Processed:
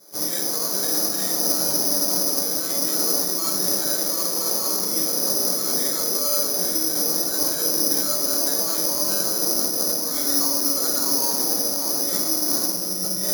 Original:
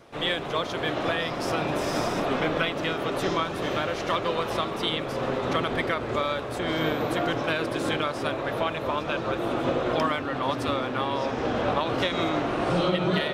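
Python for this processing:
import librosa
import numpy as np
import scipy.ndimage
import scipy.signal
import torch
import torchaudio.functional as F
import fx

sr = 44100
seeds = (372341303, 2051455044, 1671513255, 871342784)

p1 = x + fx.room_early_taps(x, sr, ms=(21, 53), db=(-7.5, -4.0), dry=0)
p2 = fx.over_compress(p1, sr, threshold_db=-26.0, ratio=-0.5)
p3 = scipy.signal.sosfilt(scipy.signal.butter(4, 2100.0, 'lowpass', fs=sr, output='sos'), p2)
p4 = fx.rev_fdn(p3, sr, rt60_s=0.72, lf_ratio=1.55, hf_ratio=1.0, size_ms=31.0, drr_db=0.0)
p5 = fx.schmitt(p4, sr, flips_db=-33.5)
p6 = p4 + (p5 * 10.0 ** (-8.0 / 20.0))
p7 = scipy.signal.sosfilt(scipy.signal.butter(4, 150.0, 'highpass', fs=sr, output='sos'), p6)
p8 = fx.peak_eq(p7, sr, hz=350.0, db=5.5, octaves=2.8)
p9 = (np.kron(scipy.signal.resample_poly(p8, 1, 8), np.eye(8)[0]) * 8)[:len(p8)]
y = p9 * 10.0 ** (-14.5 / 20.0)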